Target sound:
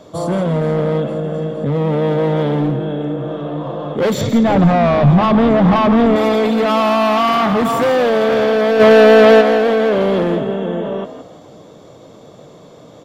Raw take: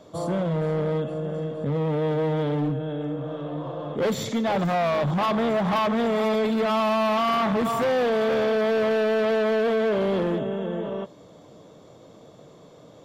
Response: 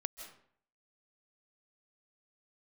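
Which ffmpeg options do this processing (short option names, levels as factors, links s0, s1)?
-filter_complex "[0:a]asettb=1/sr,asplit=3[s0][s1][s2];[s0]atrim=end=4.214[s3];[s1]atrim=start=4.21:end=6.16,asetpts=PTS-STARTPTS,afade=t=in:d=0.004:c=qsin,afade=t=out:st=1.946:d=0.004:c=qsin,aemphasis=mode=reproduction:type=bsi[s4];[s2]atrim=start=6.156[s5];[s3][s4]acrossfade=d=0.004:c1=hsin:c2=qsin[s6];[s6][s5]acrossfade=d=0.004:c1=qsin:c2=hsin,asplit=3[s7][s8][s9];[s7]afade=t=out:st=8.79:d=0.02[s10];[s8]acontrast=89,afade=t=in:st=8.79:d=0.02,afade=t=out:st=9.4:d=0.02[s11];[s9]afade=t=in:st=9.4:d=0.02[s12];[s10][s11][s12]amix=inputs=3:normalize=0,asplit=5[s13][s14][s15][s16][s17];[s14]adelay=166,afreqshift=59,volume=0.266[s18];[s15]adelay=332,afreqshift=118,volume=0.0902[s19];[s16]adelay=498,afreqshift=177,volume=0.0309[s20];[s17]adelay=664,afreqshift=236,volume=0.0105[s21];[s13][s18][s19][s20][s21]amix=inputs=5:normalize=0,volume=2.51"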